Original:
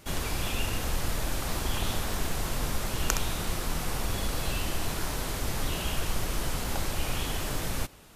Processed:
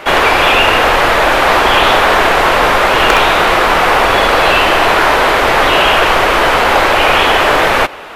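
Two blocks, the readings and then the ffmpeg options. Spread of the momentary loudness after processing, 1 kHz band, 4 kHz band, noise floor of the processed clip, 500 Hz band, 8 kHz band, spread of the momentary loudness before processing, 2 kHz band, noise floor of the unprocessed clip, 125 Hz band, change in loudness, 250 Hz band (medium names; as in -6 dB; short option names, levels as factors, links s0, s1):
1 LU, +29.0 dB, +22.0 dB, -12 dBFS, +26.5 dB, +9.0 dB, 2 LU, +28.0 dB, -34 dBFS, +7.5 dB, +23.0 dB, +16.5 dB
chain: -filter_complex "[0:a]aeval=exprs='0.188*(abs(mod(val(0)/0.188+3,4)-2)-1)':c=same,acrossover=split=410 3000:gain=0.0708 1 0.0708[s0][s1][s2];[s0][s1][s2]amix=inputs=3:normalize=0,apsyclip=37.6,volume=0.841"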